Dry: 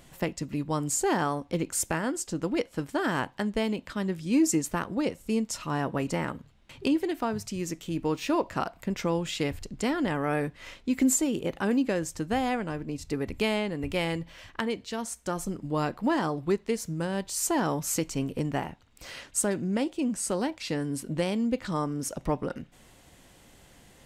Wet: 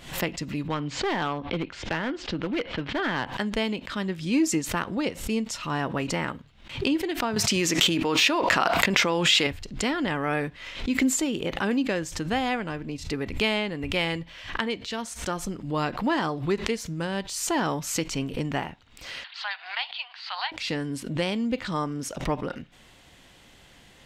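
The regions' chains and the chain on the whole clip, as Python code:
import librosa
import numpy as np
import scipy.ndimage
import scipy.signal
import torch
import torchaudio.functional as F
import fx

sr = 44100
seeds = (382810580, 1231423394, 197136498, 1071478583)

y = fx.chain(x, sr, fx.lowpass(hz=3700.0, slope=24),
    fx.clip_hard(threshold_db=-23.5),
    fx.band_squash(depth_pct=40), at=(0.68, 3.27))
y = fx.chain(y, sr, fx.highpass(hz=370.0, slope=6),
    fx.env_flatten(amount_pct=100), at=(7.36, 9.47))
y = fx.chain(y, sr, fx.cheby1_bandpass(low_hz=730.0, high_hz=4500.0, order=5),
    fx.high_shelf(hz=2200.0, db=9.0), at=(19.24, 20.52))
y = fx.curve_eq(y, sr, hz=(560.0, 3400.0, 9400.0), db=(0, 7, -4))
y = fx.pre_swell(y, sr, db_per_s=110.0)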